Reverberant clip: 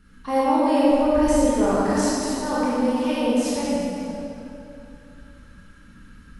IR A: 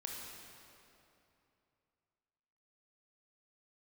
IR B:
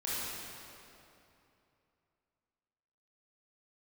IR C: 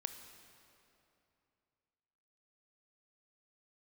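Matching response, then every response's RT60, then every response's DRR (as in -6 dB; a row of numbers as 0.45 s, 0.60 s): B; 2.8 s, 2.9 s, 2.8 s; -1.5 dB, -9.5 dB, 7.5 dB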